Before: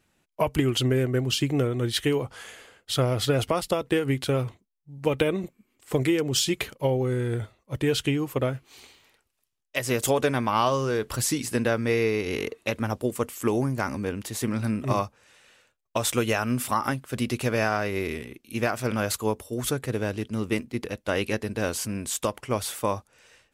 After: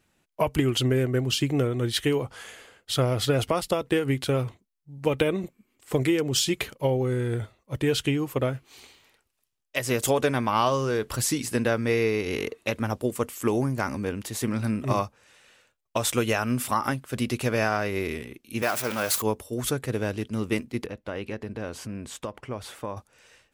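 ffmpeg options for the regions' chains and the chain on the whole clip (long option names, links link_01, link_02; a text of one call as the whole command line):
ffmpeg -i in.wav -filter_complex "[0:a]asettb=1/sr,asplit=3[link_01][link_02][link_03];[link_01]atrim=end=18.624[link_04];[link_02]atrim=start=18.62:end=19.22,asetpts=PTS-STARTPTS,afade=type=in:duration=0.004:curve=qsin,afade=type=out:start_time=0.596:duration=0.004:curve=qsin,aeval=exprs='val(0)+0.5*0.0376*sgn(val(0))':channel_layout=same,lowpass=frequency=2000:poles=1,aemphasis=mode=production:type=riaa[link_05];[link_03]atrim=start=19.216[link_06];[link_04][link_05]acrossfade=duration=0.004:curve1=hsin:curve2=qsin[link_07];[link_07][link_06]acrossfade=duration=0.004:curve1=qsin:curve2=hsin,asettb=1/sr,asplit=3[link_08][link_09][link_10];[link_08]atrim=end=20.864[link_11];[link_09]atrim=start=20.86:end=22.97,asetpts=PTS-STARTPTS,afade=type=in:duration=0.004:curve=qsin,afade=type=out:start_time=2.106:duration=0.004:curve=qsin,lowpass=frequency=1900:poles=1,acompressor=threshold=-33dB:ratio=2:attack=3.2:release=140:knee=1:detection=peak[link_12];[link_10]atrim=start=22.966[link_13];[link_11][link_12]acrossfade=duration=0.004:curve1=hsin:curve2=qsin[link_14];[link_14][link_13]acrossfade=duration=0.004:curve1=qsin:curve2=hsin" out.wav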